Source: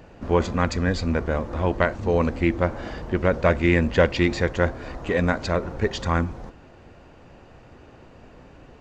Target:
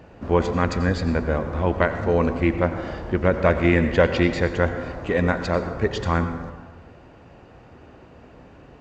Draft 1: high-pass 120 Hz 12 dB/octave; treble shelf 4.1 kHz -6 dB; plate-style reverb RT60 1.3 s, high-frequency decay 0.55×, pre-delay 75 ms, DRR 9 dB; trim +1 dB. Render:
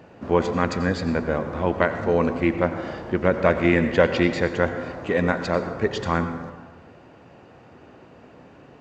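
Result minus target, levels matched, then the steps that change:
125 Hz band -3.0 dB
change: high-pass 42 Hz 12 dB/octave

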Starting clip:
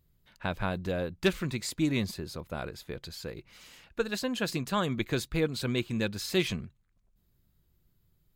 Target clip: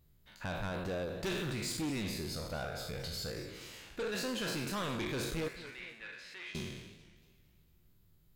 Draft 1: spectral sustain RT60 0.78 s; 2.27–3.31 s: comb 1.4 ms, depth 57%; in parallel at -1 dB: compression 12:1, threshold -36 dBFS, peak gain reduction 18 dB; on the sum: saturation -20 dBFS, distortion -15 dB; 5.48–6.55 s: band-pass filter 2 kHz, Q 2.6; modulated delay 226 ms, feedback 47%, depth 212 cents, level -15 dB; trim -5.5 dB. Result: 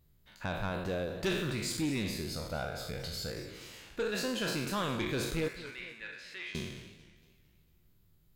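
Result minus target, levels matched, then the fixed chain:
saturation: distortion -6 dB
spectral sustain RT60 0.78 s; 2.27–3.31 s: comb 1.4 ms, depth 57%; in parallel at -1 dB: compression 12:1, threshold -36 dBFS, peak gain reduction 18 dB; on the sum: saturation -27 dBFS, distortion -8 dB; 5.48–6.55 s: band-pass filter 2 kHz, Q 2.6; modulated delay 226 ms, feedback 47%, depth 212 cents, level -15 dB; trim -5.5 dB

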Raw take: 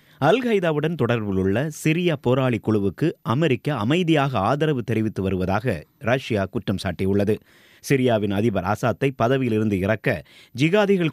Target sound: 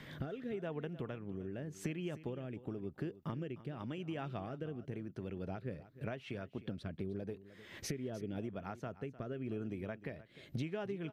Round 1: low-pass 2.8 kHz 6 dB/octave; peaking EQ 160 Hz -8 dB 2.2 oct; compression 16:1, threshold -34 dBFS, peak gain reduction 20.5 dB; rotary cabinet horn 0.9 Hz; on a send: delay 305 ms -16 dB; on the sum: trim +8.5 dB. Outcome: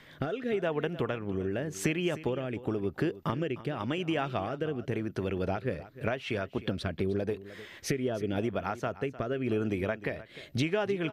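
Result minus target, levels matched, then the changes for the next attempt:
compression: peak gain reduction -12.5 dB; 125 Hz band -2.5 dB
change: compression 16:1, threshold -45.5 dBFS, peak gain reduction 32.5 dB; remove: peaking EQ 160 Hz -8 dB 2.2 oct

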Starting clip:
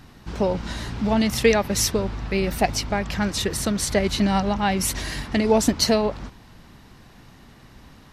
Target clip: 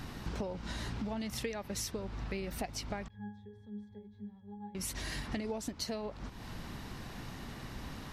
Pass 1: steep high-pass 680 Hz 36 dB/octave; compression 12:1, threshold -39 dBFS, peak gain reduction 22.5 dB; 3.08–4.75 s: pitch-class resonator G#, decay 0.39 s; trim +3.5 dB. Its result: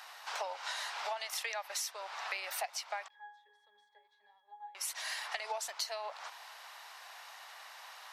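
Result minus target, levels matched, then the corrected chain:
500 Hz band -5.0 dB
compression 12:1, threshold -39 dBFS, peak gain reduction 27 dB; 3.08–4.75 s: pitch-class resonator G#, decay 0.39 s; trim +3.5 dB

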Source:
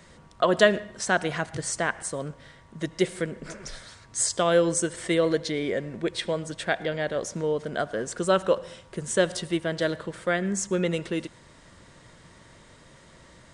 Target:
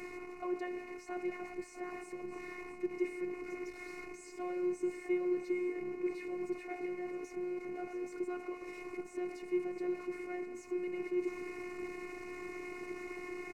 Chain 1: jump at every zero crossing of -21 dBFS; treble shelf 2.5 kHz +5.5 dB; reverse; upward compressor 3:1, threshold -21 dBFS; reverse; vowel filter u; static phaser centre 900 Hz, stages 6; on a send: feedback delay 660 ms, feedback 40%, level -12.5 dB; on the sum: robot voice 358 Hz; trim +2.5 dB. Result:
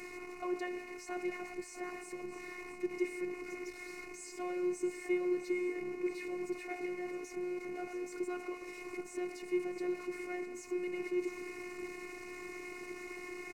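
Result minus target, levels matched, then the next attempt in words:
4 kHz band +4.5 dB
jump at every zero crossing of -21 dBFS; treble shelf 2.5 kHz -3.5 dB; reverse; upward compressor 3:1, threshold -21 dBFS; reverse; vowel filter u; static phaser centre 900 Hz, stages 6; on a send: feedback delay 660 ms, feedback 40%, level -12.5 dB; on the sum: robot voice 358 Hz; trim +2.5 dB

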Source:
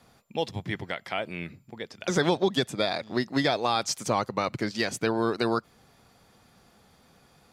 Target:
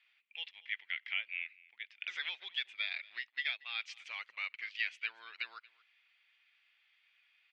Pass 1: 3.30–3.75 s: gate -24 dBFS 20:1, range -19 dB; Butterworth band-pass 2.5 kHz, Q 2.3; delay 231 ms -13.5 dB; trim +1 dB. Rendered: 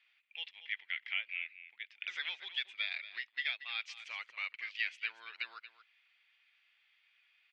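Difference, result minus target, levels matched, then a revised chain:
echo-to-direct +9 dB
3.30–3.75 s: gate -24 dBFS 20:1, range -19 dB; Butterworth band-pass 2.5 kHz, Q 2.3; delay 231 ms -22.5 dB; trim +1 dB

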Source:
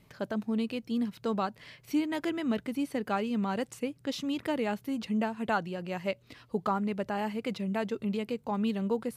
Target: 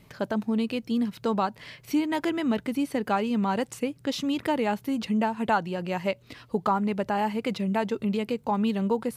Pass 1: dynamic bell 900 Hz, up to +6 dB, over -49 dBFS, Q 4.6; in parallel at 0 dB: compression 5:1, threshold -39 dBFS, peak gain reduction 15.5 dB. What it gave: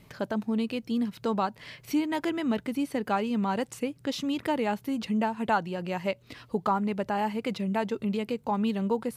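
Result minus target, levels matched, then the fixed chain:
compression: peak gain reduction +7 dB
dynamic bell 900 Hz, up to +6 dB, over -49 dBFS, Q 4.6; in parallel at 0 dB: compression 5:1, threshold -30.5 dBFS, peak gain reduction 8.5 dB

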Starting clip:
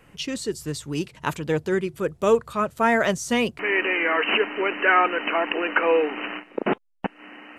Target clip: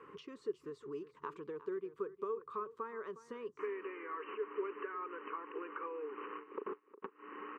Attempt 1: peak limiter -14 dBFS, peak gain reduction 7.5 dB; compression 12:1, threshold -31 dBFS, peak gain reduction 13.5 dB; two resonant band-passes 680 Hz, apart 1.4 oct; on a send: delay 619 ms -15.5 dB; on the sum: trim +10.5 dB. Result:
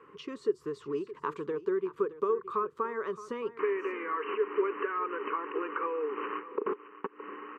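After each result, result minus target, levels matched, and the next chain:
echo 259 ms late; compression: peak gain reduction -10 dB
peak limiter -14 dBFS, peak gain reduction 7.5 dB; compression 12:1, threshold -31 dBFS, peak gain reduction 13.5 dB; two resonant band-passes 680 Hz, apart 1.4 oct; on a send: delay 360 ms -15.5 dB; on the sum: trim +10.5 dB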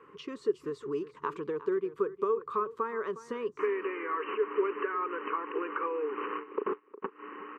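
compression: peak gain reduction -10 dB
peak limiter -14 dBFS, peak gain reduction 7.5 dB; compression 12:1, threshold -42 dBFS, peak gain reduction 24 dB; two resonant band-passes 680 Hz, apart 1.4 oct; on a send: delay 360 ms -15.5 dB; on the sum: trim +10.5 dB

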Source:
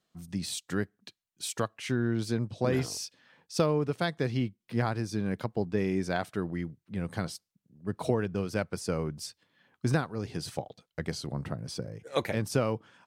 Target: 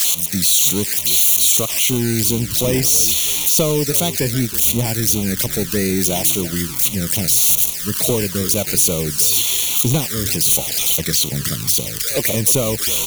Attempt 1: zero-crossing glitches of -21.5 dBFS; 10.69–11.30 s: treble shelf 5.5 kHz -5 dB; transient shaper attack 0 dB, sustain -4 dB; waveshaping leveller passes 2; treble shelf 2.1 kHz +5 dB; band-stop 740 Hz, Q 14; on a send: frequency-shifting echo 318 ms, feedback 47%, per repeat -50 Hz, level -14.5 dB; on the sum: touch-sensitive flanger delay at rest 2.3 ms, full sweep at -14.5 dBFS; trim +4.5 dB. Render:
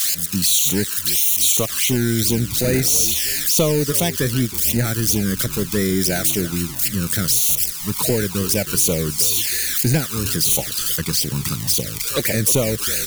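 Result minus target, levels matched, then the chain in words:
zero-crossing glitches: distortion -6 dB
zero-crossing glitches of -15 dBFS; 10.69–11.30 s: treble shelf 5.5 kHz -5 dB; transient shaper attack 0 dB, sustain -4 dB; waveshaping leveller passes 2; treble shelf 2.1 kHz +5 dB; band-stop 740 Hz, Q 14; on a send: frequency-shifting echo 318 ms, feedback 47%, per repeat -50 Hz, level -14.5 dB; on the sum: touch-sensitive flanger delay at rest 2.3 ms, full sweep at -14.5 dBFS; trim +4.5 dB

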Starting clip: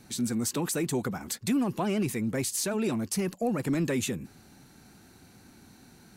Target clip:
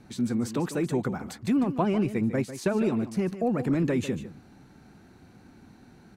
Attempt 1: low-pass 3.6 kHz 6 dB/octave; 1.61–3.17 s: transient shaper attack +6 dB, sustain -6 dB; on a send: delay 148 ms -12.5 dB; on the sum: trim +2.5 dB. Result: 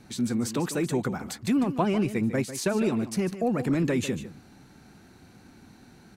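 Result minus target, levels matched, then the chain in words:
4 kHz band +5.0 dB
low-pass 1.6 kHz 6 dB/octave; 1.61–3.17 s: transient shaper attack +6 dB, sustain -6 dB; on a send: delay 148 ms -12.5 dB; on the sum: trim +2.5 dB

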